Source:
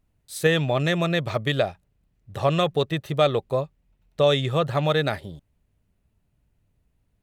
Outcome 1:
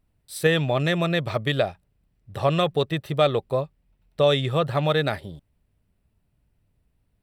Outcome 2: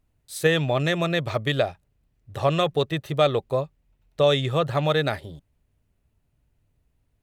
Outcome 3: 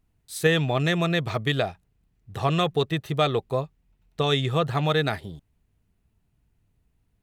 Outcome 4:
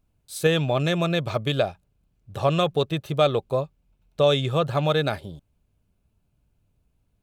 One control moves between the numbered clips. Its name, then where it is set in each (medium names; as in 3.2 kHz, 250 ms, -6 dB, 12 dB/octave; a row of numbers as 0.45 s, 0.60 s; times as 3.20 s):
band-stop, frequency: 6.6 kHz, 190 Hz, 570 Hz, 1.9 kHz